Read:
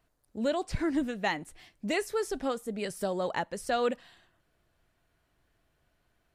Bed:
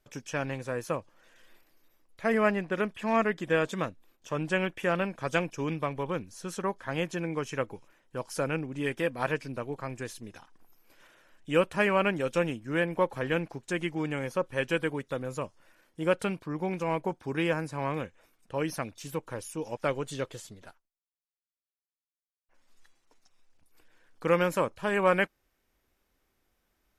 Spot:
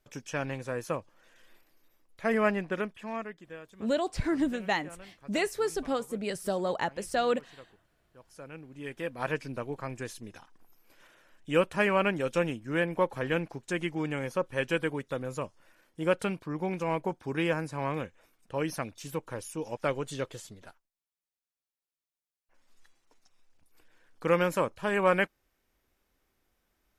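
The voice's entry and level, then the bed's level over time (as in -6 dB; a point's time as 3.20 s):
3.45 s, +1.0 dB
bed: 2.71 s -1 dB
3.63 s -20.5 dB
8.15 s -20.5 dB
9.38 s -0.5 dB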